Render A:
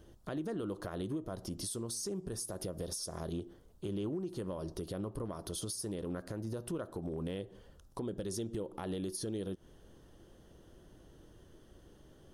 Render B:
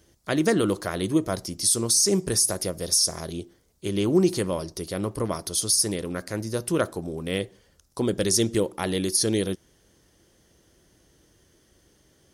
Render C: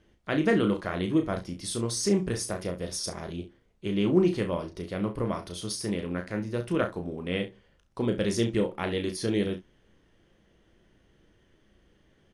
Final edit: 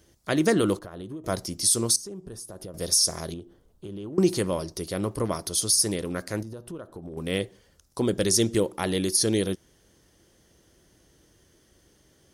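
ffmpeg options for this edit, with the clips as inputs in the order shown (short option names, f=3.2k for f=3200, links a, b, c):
-filter_complex "[0:a]asplit=4[a][b][c][d];[1:a]asplit=5[e][f][g][h][i];[e]atrim=end=0.792[j];[a]atrim=start=0.788:end=1.242[k];[f]atrim=start=1.238:end=1.962[l];[b]atrim=start=1.958:end=2.742[m];[g]atrim=start=2.738:end=3.342[n];[c]atrim=start=3.338:end=4.182[o];[h]atrim=start=4.178:end=6.432[p];[d]atrim=start=6.428:end=7.172[q];[i]atrim=start=7.168[r];[j][k]acrossfade=d=0.004:c1=hsin:c2=hsin[s];[s][l]acrossfade=d=0.004:c1=hsin:c2=hsin[t];[t][m]acrossfade=d=0.004:c1=hsin:c2=hsin[u];[u][n]acrossfade=d=0.004:c1=hsin:c2=hsin[v];[v][o]acrossfade=d=0.004:c1=hsin:c2=hsin[w];[w][p]acrossfade=d=0.004:c1=hsin:c2=hsin[x];[x][q]acrossfade=d=0.004:c1=hsin:c2=hsin[y];[y][r]acrossfade=d=0.004:c1=hsin:c2=hsin"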